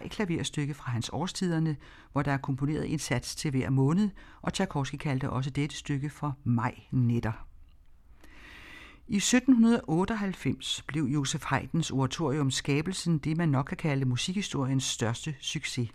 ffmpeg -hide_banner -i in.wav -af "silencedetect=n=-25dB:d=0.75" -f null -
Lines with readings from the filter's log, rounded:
silence_start: 7.31
silence_end: 9.13 | silence_duration: 1.82